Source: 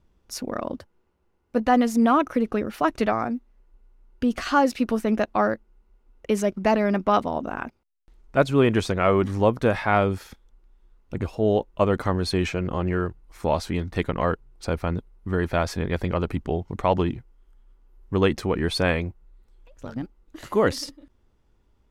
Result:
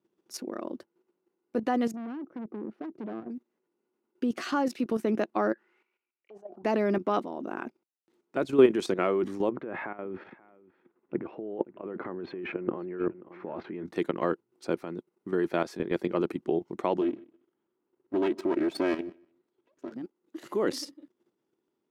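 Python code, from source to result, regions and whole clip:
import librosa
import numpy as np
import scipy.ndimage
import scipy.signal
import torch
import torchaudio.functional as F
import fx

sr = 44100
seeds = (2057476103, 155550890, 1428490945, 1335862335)

y = fx.chain(x, sr, fx.bandpass_q(hz=190.0, q=0.8),
    fx.tube_stage(drive_db=29.0, bias=0.2), at=(1.91, 3.3))
y = fx.chain(y, sr, fx.peak_eq(hz=2100.0, db=-10.0, octaves=0.29),
    fx.auto_wah(base_hz=720.0, top_hz=2400.0, q=14.0, full_db=-22.0, direction='down'),
    fx.sustainer(db_per_s=77.0), at=(5.53, 6.64))
y = fx.chain(y, sr, fx.lowpass(hz=2300.0, slope=24),
    fx.over_compress(threshold_db=-29.0, ratio=-1.0),
    fx.echo_single(ms=533, db=-20.0), at=(9.49, 13.86))
y = fx.chain(y, sr, fx.lower_of_two(delay_ms=3.1),
    fx.lowpass(hz=2900.0, slope=6),
    fx.echo_feedback(ms=153, feedback_pct=17, wet_db=-24.0), at=(17.01, 19.92))
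y = scipy.signal.sosfilt(scipy.signal.butter(4, 170.0, 'highpass', fs=sr, output='sos'), y)
y = fx.peak_eq(y, sr, hz=350.0, db=11.5, octaves=0.5)
y = fx.level_steps(y, sr, step_db=11)
y = y * librosa.db_to_amplitude(-3.5)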